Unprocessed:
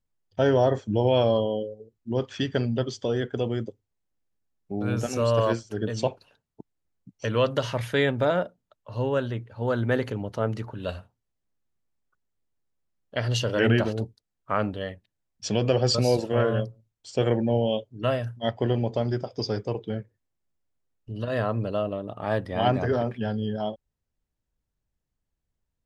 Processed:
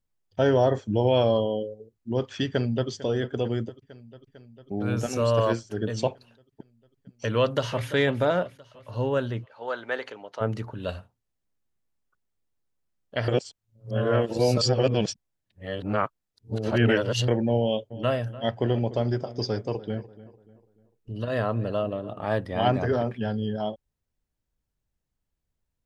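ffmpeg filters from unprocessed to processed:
-filter_complex "[0:a]asplit=2[a][b];[b]afade=t=in:st=2.47:d=0.01,afade=t=out:st=2.89:d=0.01,aecho=0:1:450|900|1350|1800|2250|2700|3150|3600|4050|4500:0.149624|0.112218|0.0841633|0.0631224|0.0473418|0.0355064|0.0266298|0.0199723|0.0149793|0.0112344[c];[a][c]amix=inputs=2:normalize=0,asplit=2[d][e];[e]afade=t=in:st=7.38:d=0.01,afade=t=out:st=7.89:d=0.01,aecho=0:1:340|680|1020|1360|1700|2040:0.199526|0.109739|0.0603567|0.0331962|0.0182579|0.0100418[f];[d][f]amix=inputs=2:normalize=0,asplit=3[g][h][i];[g]afade=t=out:st=9.44:d=0.02[j];[h]highpass=640,lowpass=5.8k,afade=t=in:st=9.44:d=0.02,afade=t=out:st=10.4:d=0.02[k];[i]afade=t=in:st=10.4:d=0.02[l];[j][k][l]amix=inputs=3:normalize=0,asplit=3[m][n][o];[m]afade=t=out:st=17.9:d=0.02[p];[n]asplit=2[q][r];[r]adelay=294,lowpass=f=2k:p=1,volume=-16.5dB,asplit=2[s][t];[t]adelay=294,lowpass=f=2k:p=1,volume=0.42,asplit=2[u][v];[v]adelay=294,lowpass=f=2k:p=1,volume=0.42,asplit=2[w][x];[x]adelay=294,lowpass=f=2k:p=1,volume=0.42[y];[q][s][u][w][y]amix=inputs=5:normalize=0,afade=t=in:st=17.9:d=0.02,afade=t=out:st=22.27:d=0.02[z];[o]afade=t=in:st=22.27:d=0.02[aa];[p][z][aa]amix=inputs=3:normalize=0,asplit=3[ab][ac][ad];[ab]atrim=end=13.282[ae];[ac]atrim=start=13.278:end=17.282,asetpts=PTS-STARTPTS,areverse[af];[ad]atrim=start=17.278[ag];[ae][af]acrossfade=d=0.004:c1=hsin:c2=hsin[ah];[ah][ag]acrossfade=d=0.004:c1=hsin:c2=hsin"

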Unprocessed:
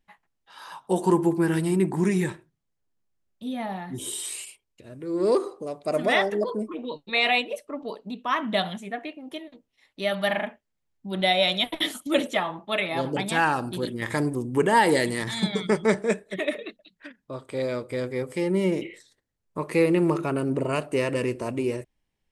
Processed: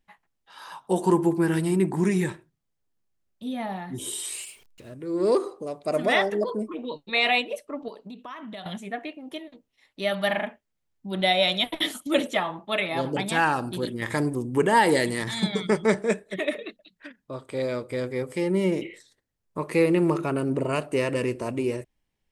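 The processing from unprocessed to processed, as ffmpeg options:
-filter_complex "[0:a]asettb=1/sr,asplit=3[a][b][c];[a]atrim=end=4.334[d];[b]atrim=start=4.33:end=4.94,asetpts=PTS-STARTPTS,afade=t=in:d=0.004:c=qsin,afade=t=out:st=0.606:d=0.004:c=qsin,aeval=exprs='val(0)+0.5*0.00282*sgn(val(0))':c=same[e];[c]atrim=start=4.936[f];[d][e]acrossfade=d=0.004:c1=hsin:c2=qsin[g];[g][f]acrossfade=d=0.004:c1=qsin:c2=hsin,asettb=1/sr,asplit=3[h][i][j];[h]atrim=end=7.884[k];[i]atrim=start=7.88:end=8.66,asetpts=PTS-STARTPTS,afade=t=in:d=0.004:c=qsin,afade=t=out:st=0.776:d=0.004:c=qsin,acompressor=threshold=-37dB:ratio=5:attack=3.2:release=140:knee=1:detection=peak[l];[j]atrim=start=8.656[m];[k][l]acrossfade=d=0.004:c1=hsin:c2=qsin[n];[n][m]acrossfade=d=0.004:c1=qsin:c2=hsin"

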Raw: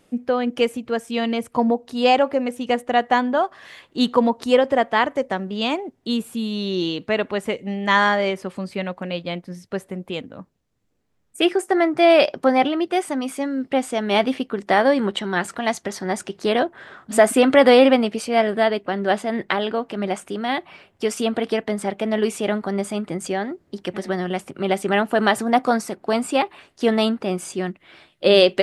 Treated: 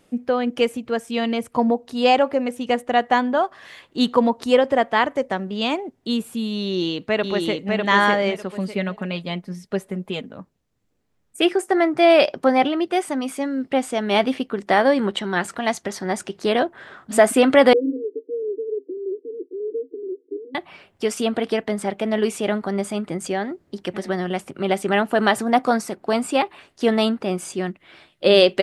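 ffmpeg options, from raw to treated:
-filter_complex "[0:a]asplit=2[a][b];[b]afade=t=in:st=6.63:d=0.01,afade=t=out:st=7.74:d=0.01,aecho=0:1:600|1200|1800:0.749894|0.149979|0.0299958[c];[a][c]amix=inputs=2:normalize=0,asettb=1/sr,asplit=3[d][e][f];[d]atrim=end=8.524[g];[e]atrim=start=8.52:end=10.33,asetpts=PTS-STARTPTS,afade=t=in:d=0.004:c=qsin,afade=t=out:st=1.806:d=0.004:c=qsin,aecho=1:1:4.8:0.52,atrim=end_sample=79821[h];[f]atrim=start=10.326[i];[g][h]acrossfade=d=0.004:c1=hsin:c2=qsin[j];[j][i]acrossfade=d=0.004:c1=qsin:c2=hsin,asettb=1/sr,asplit=3[k][l][m];[k]atrim=end=17.734[n];[l]atrim=start=17.73:end=20.55,asetpts=PTS-STARTPTS,afade=t=in:d=0.004:c=qsin,afade=t=out:st=2.816:d=0.004:c=qsin,asuperpass=centerf=360:order=20:qfactor=1.7[o];[m]atrim=start=20.546[p];[n][o]acrossfade=d=0.004:c1=hsin:c2=qsin[q];[q][p]acrossfade=d=0.004:c1=qsin:c2=hsin"

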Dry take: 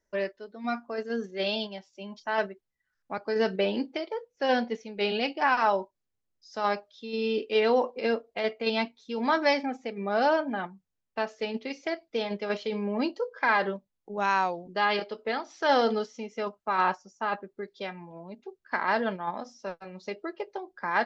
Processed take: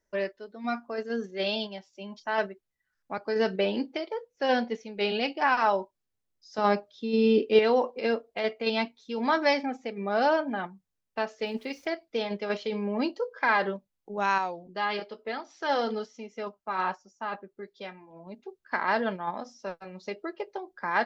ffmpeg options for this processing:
-filter_complex "[0:a]asettb=1/sr,asplit=3[a][b][c];[a]atrim=end=6.584[d];[b]atrim=start=6.58:end=7.59,asetpts=PTS-STARTPTS,afade=t=in:d=0.004:c=qsin,afade=t=out:st=1.006:d=0.004:c=qsin,equalizer=f=180:w=0.4:g=9.5[e];[c]atrim=start=7.586[f];[d][e]acrossfade=d=0.004:c1=hsin:c2=qsin[g];[g][f]acrossfade=d=0.004:c1=qsin:c2=hsin,asettb=1/sr,asplit=3[h][i][j];[h]atrim=end=11.464[k];[i]atrim=start=11.46:end=11.86,asetpts=PTS-STARTPTS,afade=t=in:d=0.004:c=qsin,afade=t=out:st=0.396:d=0.004:c=qsin,aeval=exprs='val(0)*gte(abs(val(0)),0.00168)':c=same[l];[j]atrim=start=11.856[m];[k][l]acrossfade=d=0.004:c1=hsin:c2=qsin[n];[n][m]acrossfade=d=0.004:c1=qsin:c2=hsin,asettb=1/sr,asplit=3[o][p][q];[o]atrim=end=14.384[r];[p]atrim=start=14.38:end=18.27,asetpts=PTS-STARTPTS,afade=t=in:d=0.004:c=qsin,afade=t=out:st=3.886:d=0.004:c=qsin,flanger=delay=2.9:depth=3:regen=-64:speed=1.1:shape=sinusoidal[s];[q]atrim=start=18.266[t];[r][s]acrossfade=d=0.004:c1=hsin:c2=qsin[u];[u][t]acrossfade=d=0.004:c1=qsin:c2=hsin"

